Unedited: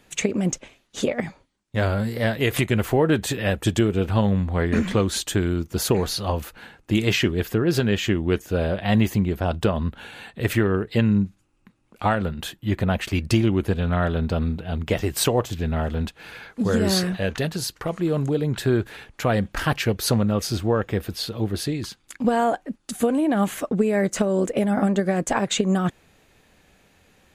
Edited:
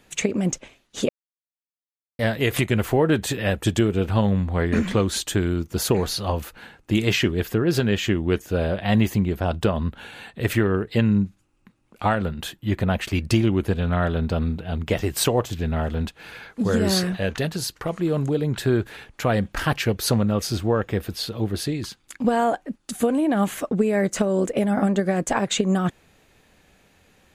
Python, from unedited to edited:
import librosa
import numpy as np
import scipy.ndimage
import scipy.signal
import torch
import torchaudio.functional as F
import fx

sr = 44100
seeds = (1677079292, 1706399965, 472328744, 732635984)

y = fx.edit(x, sr, fx.silence(start_s=1.09, length_s=1.1), tone=tone)